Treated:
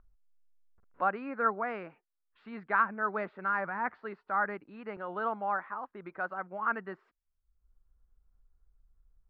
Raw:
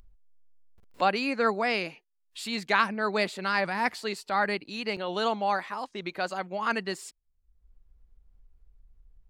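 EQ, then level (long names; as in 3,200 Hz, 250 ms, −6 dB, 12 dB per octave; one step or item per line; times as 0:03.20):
transistor ladder low-pass 1,600 Hz, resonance 55%
+1.5 dB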